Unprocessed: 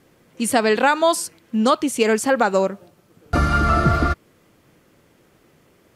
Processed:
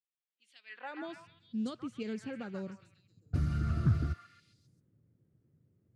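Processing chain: high-pass sweep 3.4 kHz -> 110 Hz, 0.63–1.15 s; amplifier tone stack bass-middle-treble 10-0-1; level-controlled noise filter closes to 980 Hz, open at -29.5 dBFS; repeats whose band climbs or falls 134 ms, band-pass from 1.3 kHz, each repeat 0.7 oct, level -2.5 dB; loudspeaker Doppler distortion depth 0.24 ms

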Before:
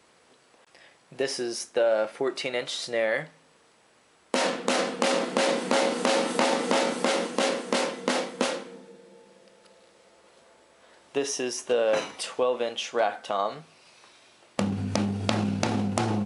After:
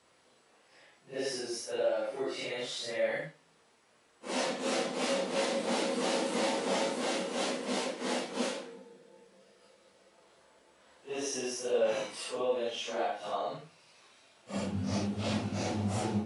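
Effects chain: phase randomisation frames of 200 ms; dynamic bell 1.3 kHz, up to -4 dB, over -37 dBFS, Q 1.1; trim -5.5 dB

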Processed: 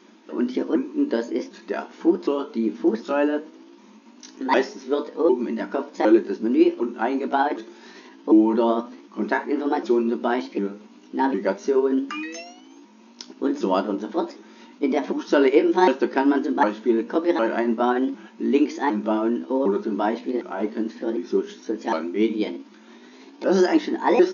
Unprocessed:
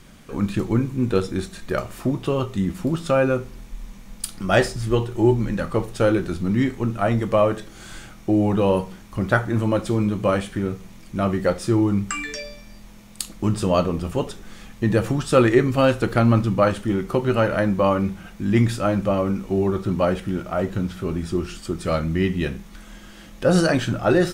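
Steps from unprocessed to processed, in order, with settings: sawtooth pitch modulation +6 st, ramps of 756 ms; FFT band-pass 190–6800 Hz; small resonant body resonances 340/930 Hz, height 12 dB, ringing for 35 ms; trim -4 dB

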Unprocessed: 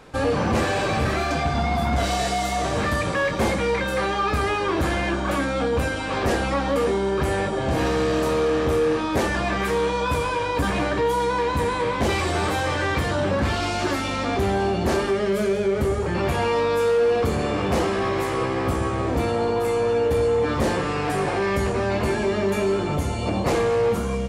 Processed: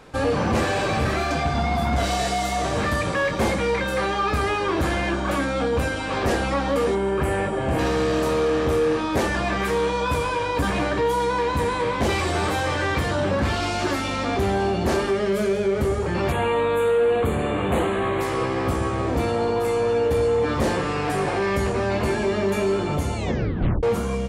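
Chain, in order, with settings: 6.95–7.79 s: high-order bell 4.8 kHz -8.5 dB 1.1 oct; 16.32–18.21 s: Butterworth band-stop 5.3 kHz, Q 1.4; 23.16 s: tape stop 0.67 s

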